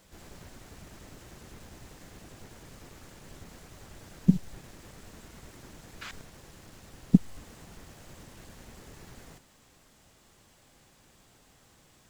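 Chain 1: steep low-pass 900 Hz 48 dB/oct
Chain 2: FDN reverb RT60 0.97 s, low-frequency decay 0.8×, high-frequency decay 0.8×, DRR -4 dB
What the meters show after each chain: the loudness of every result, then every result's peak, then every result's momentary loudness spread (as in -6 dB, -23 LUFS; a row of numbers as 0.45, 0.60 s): -27.0, -30.5 LUFS; -5.0, -6.5 dBFS; 3, 21 LU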